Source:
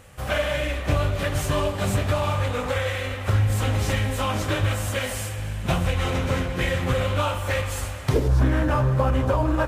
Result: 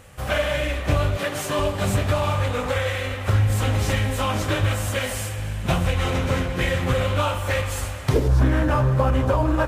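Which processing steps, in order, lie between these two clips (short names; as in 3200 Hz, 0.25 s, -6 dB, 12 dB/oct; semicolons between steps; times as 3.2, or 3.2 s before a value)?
1.17–1.59 HPF 210 Hz 12 dB/oct; gain +1.5 dB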